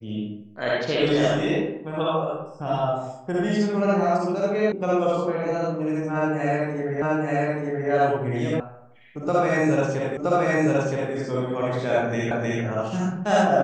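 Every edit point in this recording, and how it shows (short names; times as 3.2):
4.72 sound cut off
7.02 repeat of the last 0.88 s
8.6 sound cut off
10.17 repeat of the last 0.97 s
12.31 repeat of the last 0.31 s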